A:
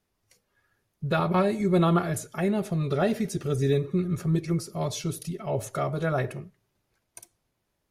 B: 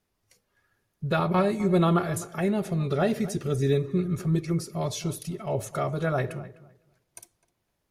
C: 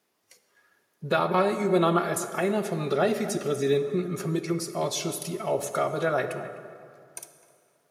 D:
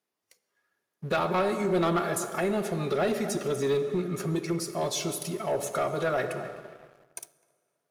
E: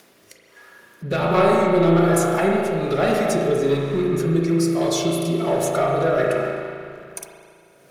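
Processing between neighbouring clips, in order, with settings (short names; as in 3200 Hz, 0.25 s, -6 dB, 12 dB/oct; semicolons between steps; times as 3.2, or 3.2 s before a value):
darkening echo 0.255 s, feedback 19%, low-pass 2400 Hz, level -16.5 dB
HPF 280 Hz 12 dB/oct; in parallel at 0 dB: compressor, threshold -34 dBFS, peak gain reduction 13.5 dB; on the sum: plate-style reverb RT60 2.6 s, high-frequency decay 0.55×, DRR 10 dB
sample leveller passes 2; gain -8 dB
upward compressor, threshold -36 dBFS; rotary speaker horn 1.2 Hz; spring tank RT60 2.1 s, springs 36 ms, chirp 35 ms, DRR -1 dB; gain +7 dB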